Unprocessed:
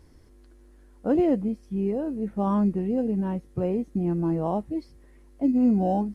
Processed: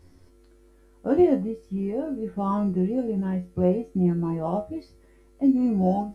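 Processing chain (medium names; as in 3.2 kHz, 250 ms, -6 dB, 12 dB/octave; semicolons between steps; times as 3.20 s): feedback comb 90 Hz, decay 0.24 s, harmonics all, mix 90%; trim +8 dB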